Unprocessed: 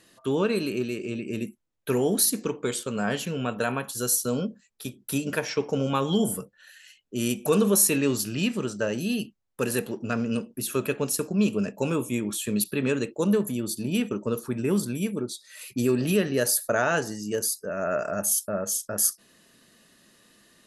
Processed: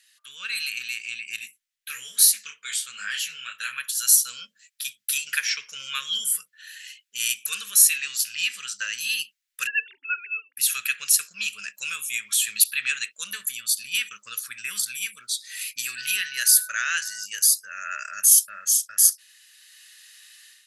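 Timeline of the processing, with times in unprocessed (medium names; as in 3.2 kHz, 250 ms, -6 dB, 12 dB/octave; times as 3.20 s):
1.36–3.78 s: detune thickener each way 41 cents
9.67–10.57 s: formants replaced by sine waves
15.95–17.24 s: whistle 1.5 kHz -41 dBFS
whole clip: level rider gain up to 11.5 dB; inverse Chebyshev high-pass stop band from 870 Hz, stop band 40 dB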